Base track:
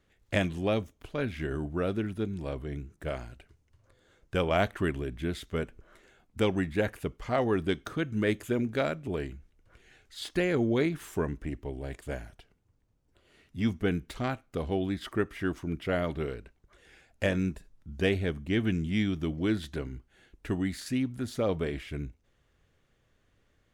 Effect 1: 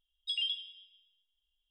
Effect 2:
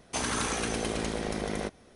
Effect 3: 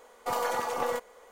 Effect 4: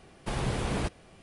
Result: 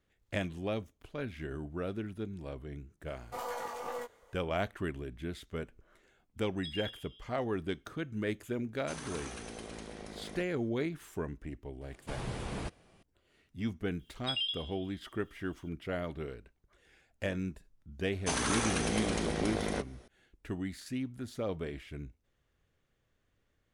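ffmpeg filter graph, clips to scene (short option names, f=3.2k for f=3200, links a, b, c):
-filter_complex "[1:a]asplit=2[a][b];[2:a]asplit=2[c][d];[0:a]volume=-7dB[e];[3:a]flanger=delay=16:depth=5.1:speed=2.1[f];[a]alimiter=level_in=8dB:limit=-24dB:level=0:latency=1:release=353,volume=-8dB[g];[b]acompressor=mode=upward:threshold=-52dB:ratio=2.5:attack=3.2:release=140:knee=2.83:detection=peak[h];[f]atrim=end=1.31,asetpts=PTS-STARTPTS,volume=-6.5dB,afade=t=in:d=0.004:c=hsin,afade=t=out:st=1.306:d=0.004:c=hsin,adelay=3060[i];[g]atrim=end=1.7,asetpts=PTS-STARTPTS,volume=-3.5dB,afade=t=in:d=0.004:c=hsin,afade=t=out:st=1.696:d=0.004:c=hsin,adelay=6360[j];[c]atrim=end=1.95,asetpts=PTS-STARTPTS,volume=-13.5dB,afade=t=in:d=0.004:c=hsin,afade=t=out:st=1.946:d=0.004:c=hsin,adelay=385434S[k];[4:a]atrim=end=1.22,asetpts=PTS-STARTPTS,volume=-8dB,afade=t=in:d=0.004:c=hsin,afade=t=out:st=1.216:d=0.004:c=hsin,adelay=11810[l];[h]atrim=end=1.7,asetpts=PTS-STARTPTS,volume=-0.5dB,afade=t=in:d=0.004:c=hsin,afade=t=out:st=1.696:d=0.004:c=hsin,adelay=13990[m];[d]atrim=end=1.95,asetpts=PTS-STARTPTS,volume=-1.5dB,afade=t=in:d=0.004:c=hsin,afade=t=out:st=1.946:d=0.004:c=hsin,adelay=18130[n];[e][i][j][k][l][m][n]amix=inputs=7:normalize=0"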